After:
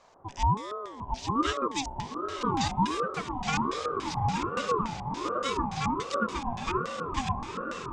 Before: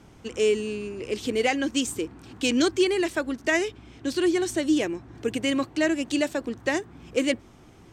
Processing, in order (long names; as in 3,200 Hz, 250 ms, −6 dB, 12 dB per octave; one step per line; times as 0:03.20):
feedback delay with all-pass diffusion 1,038 ms, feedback 53%, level −4 dB
auto-filter low-pass square 3.5 Hz 540–5,600 Hz
ring modulator whose carrier an LFO sweeps 660 Hz, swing 30%, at 1.3 Hz
level −5.5 dB